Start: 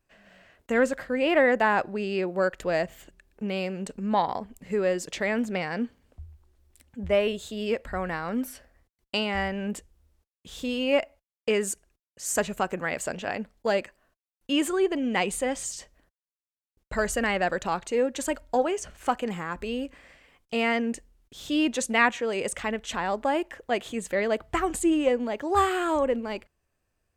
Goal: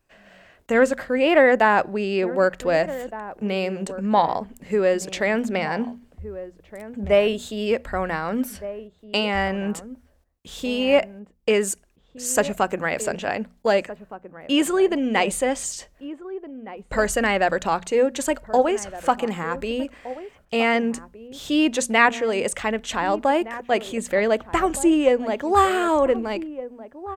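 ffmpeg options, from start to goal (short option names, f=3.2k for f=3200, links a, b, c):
-filter_complex "[0:a]bandreject=f=60:t=h:w=6,bandreject=f=120:t=h:w=6,bandreject=f=180:t=h:w=6,bandreject=f=240:t=h:w=6,acrossover=split=910[a][b];[a]crystalizer=i=8.5:c=0[c];[c][b]amix=inputs=2:normalize=0,asplit=2[d][e];[e]adelay=1516,volume=-14dB,highshelf=f=4k:g=-34.1[f];[d][f]amix=inputs=2:normalize=0,volume=4.5dB"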